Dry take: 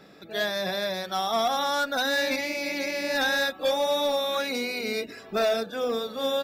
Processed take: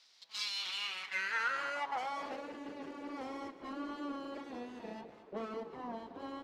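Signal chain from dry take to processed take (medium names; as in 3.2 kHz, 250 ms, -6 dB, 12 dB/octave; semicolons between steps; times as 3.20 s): on a send: thinning echo 218 ms, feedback 52%, high-pass 150 Hz, level -14 dB; on the sum: full-wave rectifier; band-pass sweep 4.7 kHz -> 400 Hz, 0.37–2.65 s; trim +1 dB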